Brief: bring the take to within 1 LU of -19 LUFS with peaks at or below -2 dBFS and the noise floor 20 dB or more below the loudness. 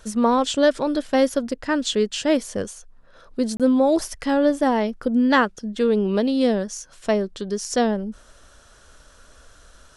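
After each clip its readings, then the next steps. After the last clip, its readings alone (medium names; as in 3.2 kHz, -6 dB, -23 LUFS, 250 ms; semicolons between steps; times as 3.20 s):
dropouts 1; longest dropout 27 ms; loudness -21.5 LUFS; peak level -5.5 dBFS; loudness target -19.0 LUFS
-> interpolate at 3.57 s, 27 ms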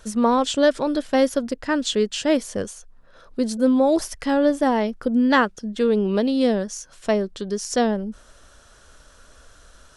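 dropouts 0; loudness -21.5 LUFS; peak level -5.5 dBFS; loudness target -19.0 LUFS
-> trim +2.5 dB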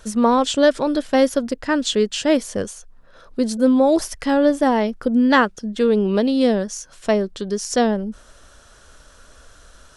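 loudness -19.0 LUFS; peak level -3.0 dBFS; noise floor -49 dBFS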